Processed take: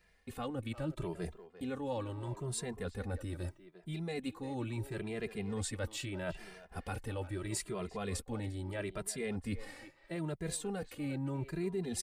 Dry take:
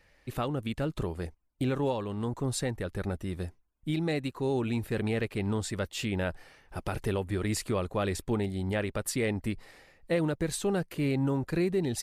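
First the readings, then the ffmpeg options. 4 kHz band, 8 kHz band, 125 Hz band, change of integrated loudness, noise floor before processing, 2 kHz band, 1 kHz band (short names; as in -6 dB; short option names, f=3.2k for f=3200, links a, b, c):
-7.0 dB, -3.5 dB, -7.5 dB, -8.0 dB, -65 dBFS, -8.0 dB, -7.5 dB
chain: -filter_complex "[0:a]agate=range=-7dB:threshold=-56dB:ratio=16:detection=peak,areverse,acompressor=threshold=-37dB:ratio=12,areverse,aexciter=amount=1.2:drive=5.3:freq=7.8k,asplit=2[a][b];[b]adelay=350,highpass=300,lowpass=3.4k,asoftclip=type=hard:threshold=-35dB,volume=-12dB[c];[a][c]amix=inputs=2:normalize=0,asplit=2[d][e];[e]adelay=2.5,afreqshift=0.77[f];[d][f]amix=inputs=2:normalize=1,volume=5dB"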